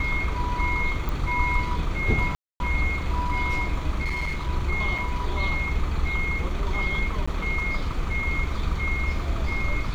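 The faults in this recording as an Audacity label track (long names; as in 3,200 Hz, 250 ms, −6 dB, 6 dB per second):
1.090000	1.090000	click
2.350000	2.600000	drop-out 251 ms
4.050000	4.500000	clipping −24 dBFS
4.980000	4.980000	drop-out 4.9 ms
7.260000	7.280000	drop-out 15 ms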